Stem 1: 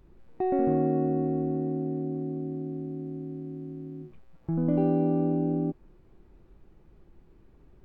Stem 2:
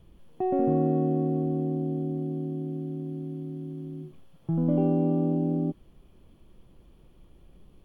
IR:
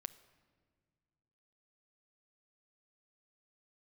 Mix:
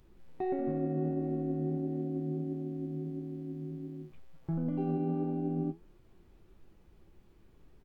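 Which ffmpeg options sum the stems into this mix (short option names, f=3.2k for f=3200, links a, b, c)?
-filter_complex "[0:a]highshelf=f=2.2k:g=10,alimiter=limit=-22.5dB:level=0:latency=1:release=191,volume=-0.5dB[a];[1:a]adelay=6.8,volume=-10dB[b];[a][b]amix=inputs=2:normalize=0,flanger=delay=8.1:depth=5.6:regen=72:speed=1.5:shape=triangular"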